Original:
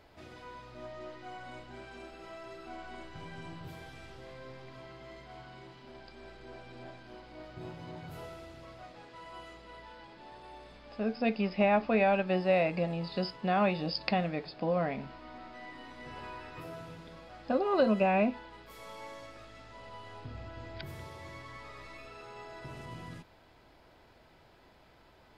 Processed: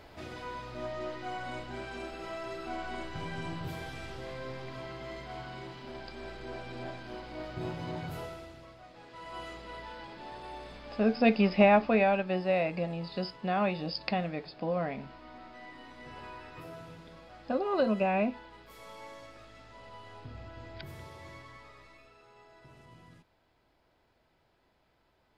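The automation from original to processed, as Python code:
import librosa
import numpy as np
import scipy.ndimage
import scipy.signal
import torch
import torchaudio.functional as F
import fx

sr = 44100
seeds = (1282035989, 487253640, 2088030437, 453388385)

y = fx.gain(x, sr, db=fx.line((8.02, 7.0), (8.82, -4.0), (9.43, 6.0), (11.56, 6.0), (12.26, -1.5), (21.32, -1.5), (22.19, -10.5)))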